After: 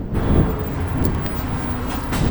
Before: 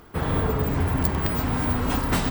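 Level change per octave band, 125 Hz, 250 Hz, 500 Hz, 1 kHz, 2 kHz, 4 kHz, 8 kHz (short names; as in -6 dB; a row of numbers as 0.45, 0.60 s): +4.0, +4.0, +2.5, +0.5, 0.0, 0.0, 0.0 dB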